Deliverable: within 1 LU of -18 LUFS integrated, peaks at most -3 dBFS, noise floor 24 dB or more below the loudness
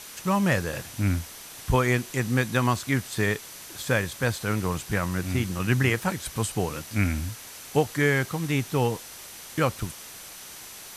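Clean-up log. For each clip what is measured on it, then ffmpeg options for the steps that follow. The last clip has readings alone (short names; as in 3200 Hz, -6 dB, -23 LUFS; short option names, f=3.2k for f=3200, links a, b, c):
steady tone 6000 Hz; tone level -52 dBFS; noise floor -43 dBFS; noise floor target -51 dBFS; loudness -26.5 LUFS; peak -9.0 dBFS; loudness target -18.0 LUFS
-> -af "bandreject=f=6k:w=30"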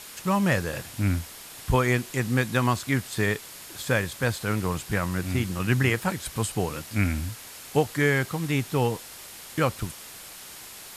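steady tone none; noise floor -43 dBFS; noise floor target -51 dBFS
-> -af "afftdn=nr=8:nf=-43"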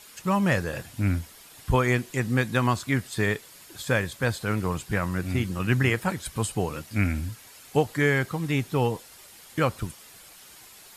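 noise floor -50 dBFS; noise floor target -51 dBFS
-> -af "afftdn=nr=6:nf=-50"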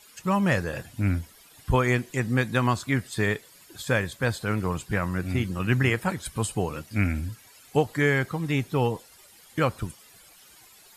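noise floor -54 dBFS; loudness -26.5 LUFS; peak -9.5 dBFS; loudness target -18.0 LUFS
-> -af "volume=8.5dB,alimiter=limit=-3dB:level=0:latency=1"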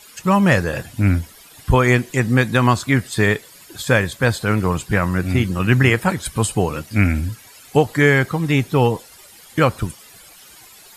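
loudness -18.0 LUFS; peak -3.0 dBFS; noise floor -45 dBFS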